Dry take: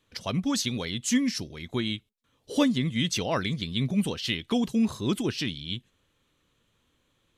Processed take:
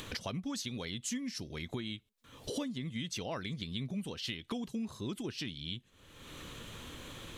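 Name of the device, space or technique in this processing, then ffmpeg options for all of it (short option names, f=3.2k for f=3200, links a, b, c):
upward and downward compression: -af "acompressor=mode=upward:threshold=-33dB:ratio=2.5,acompressor=threshold=-41dB:ratio=5,volume=3.5dB"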